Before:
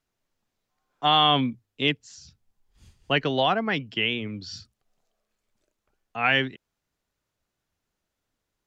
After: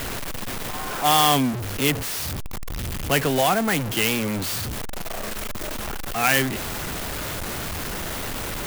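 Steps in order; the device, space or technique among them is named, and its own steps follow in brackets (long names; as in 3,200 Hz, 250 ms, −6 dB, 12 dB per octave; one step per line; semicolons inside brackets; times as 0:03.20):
early CD player with a faulty converter (converter with a step at zero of −22.5 dBFS; converter with an unsteady clock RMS 0.046 ms)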